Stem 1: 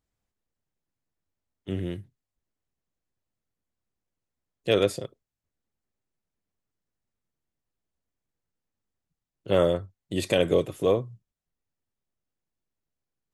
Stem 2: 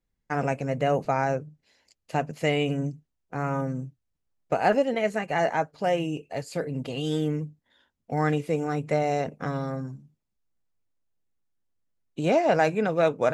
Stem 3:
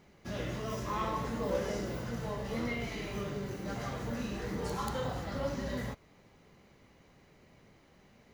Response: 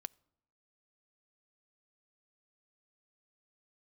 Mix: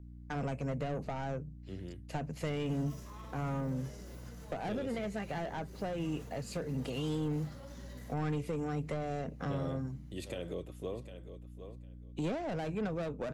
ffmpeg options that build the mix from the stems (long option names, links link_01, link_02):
-filter_complex "[0:a]alimiter=limit=-13dB:level=0:latency=1,volume=-14dB,asplit=2[link_01][link_02];[link_02]volume=-13.5dB[link_03];[1:a]aeval=exprs='val(0)+0.00562*(sin(2*PI*60*n/s)+sin(2*PI*2*60*n/s)/2+sin(2*PI*3*60*n/s)/3+sin(2*PI*4*60*n/s)/4+sin(2*PI*5*60*n/s)/5)':channel_layout=same,asoftclip=type=tanh:threshold=-23.5dB,volume=-3dB[link_04];[2:a]equalizer=frequency=11000:width_type=o:width=1.7:gain=12.5,alimiter=level_in=7dB:limit=-24dB:level=0:latency=1:release=96,volume=-7dB,adelay=2200,volume=-11.5dB[link_05];[link_03]aecho=0:1:754|1508|2262:1|0.16|0.0256[link_06];[link_01][link_04][link_05][link_06]amix=inputs=4:normalize=0,acrossover=split=300[link_07][link_08];[link_08]acompressor=threshold=-38dB:ratio=5[link_09];[link_07][link_09]amix=inputs=2:normalize=0"